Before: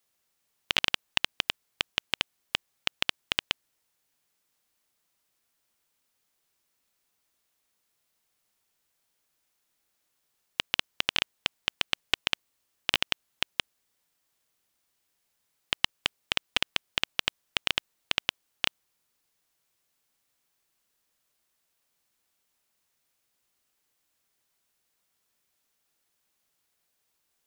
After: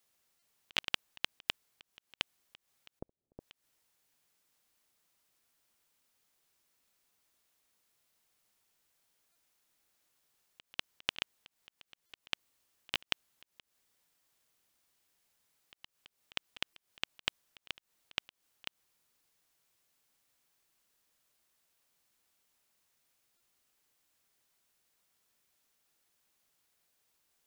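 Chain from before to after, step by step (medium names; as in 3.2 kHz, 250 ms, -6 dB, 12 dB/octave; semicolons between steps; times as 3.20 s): 2.99–3.40 s: inverse Chebyshev low-pass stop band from 3.3 kHz, stop band 80 dB; slow attack 163 ms; buffer glitch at 0.39/9.32/12.06/16.73/23.37 s, samples 128, times 10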